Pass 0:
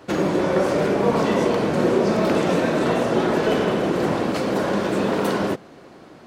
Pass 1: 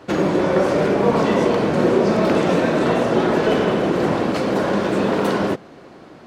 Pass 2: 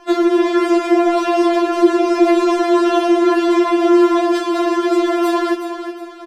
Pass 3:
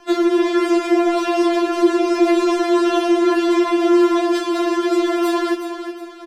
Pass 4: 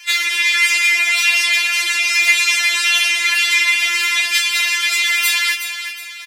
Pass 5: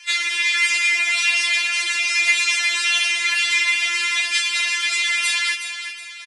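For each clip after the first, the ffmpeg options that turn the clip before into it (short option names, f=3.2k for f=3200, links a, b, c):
-af "highshelf=f=7.8k:g=-7.5,volume=2.5dB"
-filter_complex "[0:a]asplit=2[a][b];[b]asoftclip=type=tanh:threshold=-11.5dB,volume=-8dB[c];[a][c]amix=inputs=2:normalize=0,aecho=1:1:367|734|1101|1468:0.335|0.127|0.0484|0.0184,afftfilt=real='re*4*eq(mod(b,16),0)':imag='im*4*eq(mod(b,16),0)':win_size=2048:overlap=0.75,volume=3dB"
-filter_complex "[0:a]tiltshelf=f=1.1k:g=-4,acrossover=split=410|1700[a][b][c];[a]acontrast=78[d];[d][b][c]amix=inputs=3:normalize=0,volume=-3.5dB"
-af "highpass=f=2.2k:t=q:w=6.8,acontrast=79,crystalizer=i=10:c=0,volume=-11dB"
-af "aresample=22050,aresample=44100,volume=-4dB"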